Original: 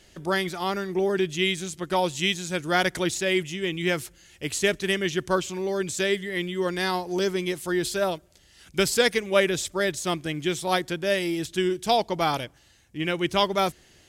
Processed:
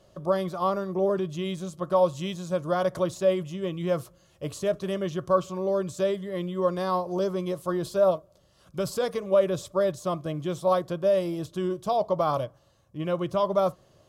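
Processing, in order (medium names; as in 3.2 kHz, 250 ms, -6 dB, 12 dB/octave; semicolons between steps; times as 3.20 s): graphic EQ 125/1000/2000/8000 Hz +11/+4/-11/-5 dB; peak limiter -16 dBFS, peak gain reduction 7.5 dB; small resonant body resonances 590/1100 Hz, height 15 dB, ringing for 20 ms; on a send: reverberation, pre-delay 3 ms, DRR 14.5 dB; on the sum: trim -7.5 dB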